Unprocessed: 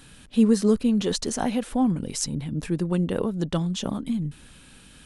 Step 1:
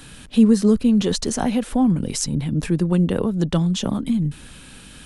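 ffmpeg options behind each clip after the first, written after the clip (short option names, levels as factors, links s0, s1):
-filter_complex "[0:a]acrossover=split=220[s0][s1];[s1]acompressor=threshold=0.0158:ratio=1.5[s2];[s0][s2]amix=inputs=2:normalize=0,volume=2.37"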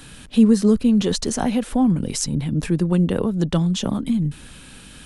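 -af anull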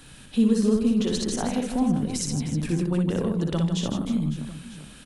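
-af "aecho=1:1:60|156|309.6|555.4|948.6:0.631|0.398|0.251|0.158|0.1,volume=0.473"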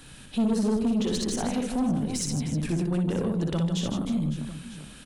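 -af "asoftclip=type=tanh:threshold=0.106"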